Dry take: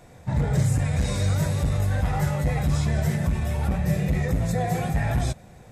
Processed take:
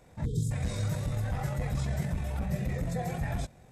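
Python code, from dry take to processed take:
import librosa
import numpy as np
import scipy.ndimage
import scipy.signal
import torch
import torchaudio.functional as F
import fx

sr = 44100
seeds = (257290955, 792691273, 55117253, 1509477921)

y = fx.spec_erase(x, sr, start_s=0.39, length_s=0.39, low_hz=510.0, high_hz=3100.0)
y = fx.stretch_grains(y, sr, factor=0.65, grain_ms=45.0)
y = F.gain(torch.from_numpy(y), -7.0).numpy()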